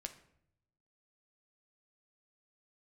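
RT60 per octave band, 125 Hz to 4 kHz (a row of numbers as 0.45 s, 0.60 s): 1.3 s, 0.95 s, 0.75 s, 0.65 s, 0.60 s, 0.45 s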